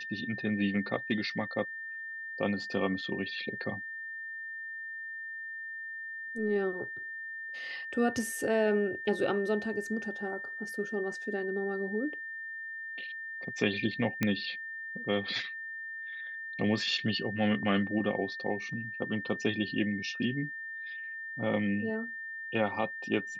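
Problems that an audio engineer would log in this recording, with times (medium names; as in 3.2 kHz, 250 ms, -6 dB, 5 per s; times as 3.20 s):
whine 1.8 kHz -38 dBFS
14.23 s: pop -14 dBFS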